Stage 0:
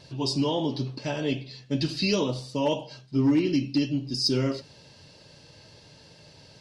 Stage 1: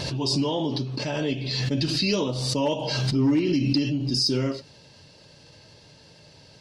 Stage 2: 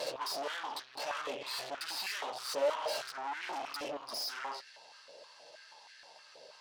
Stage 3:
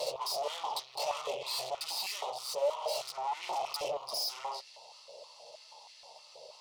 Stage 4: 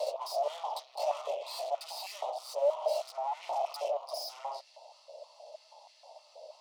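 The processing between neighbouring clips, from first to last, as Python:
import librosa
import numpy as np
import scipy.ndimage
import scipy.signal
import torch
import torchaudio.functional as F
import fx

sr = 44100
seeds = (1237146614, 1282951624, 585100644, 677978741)

y1 = fx.pre_swell(x, sr, db_per_s=24.0)
y2 = fx.chorus_voices(y1, sr, voices=4, hz=1.4, base_ms=15, depth_ms=3.0, mix_pct=30)
y2 = fx.tube_stage(y2, sr, drive_db=36.0, bias=0.55)
y2 = fx.filter_held_highpass(y2, sr, hz=6.3, low_hz=550.0, high_hz=1700.0)
y3 = fx.rider(y2, sr, range_db=10, speed_s=0.5)
y3 = fx.fixed_phaser(y3, sr, hz=670.0, stages=4)
y3 = F.gain(torch.from_numpy(y3), 4.5).numpy()
y4 = fx.highpass_res(y3, sr, hz=640.0, q=4.9)
y4 = F.gain(torch.from_numpy(y4), -7.0).numpy()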